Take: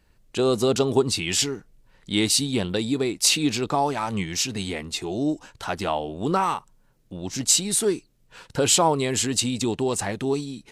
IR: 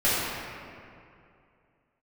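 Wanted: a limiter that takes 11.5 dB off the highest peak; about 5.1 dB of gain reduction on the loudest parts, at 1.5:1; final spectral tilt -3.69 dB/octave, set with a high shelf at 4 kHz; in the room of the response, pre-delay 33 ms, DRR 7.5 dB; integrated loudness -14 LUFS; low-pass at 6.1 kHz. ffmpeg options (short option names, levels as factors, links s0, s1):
-filter_complex "[0:a]lowpass=6100,highshelf=f=4000:g=8.5,acompressor=threshold=0.0447:ratio=1.5,alimiter=limit=0.106:level=0:latency=1,asplit=2[s0][s1];[1:a]atrim=start_sample=2205,adelay=33[s2];[s1][s2]afir=irnorm=-1:irlink=0,volume=0.0631[s3];[s0][s3]amix=inputs=2:normalize=0,volume=5.62"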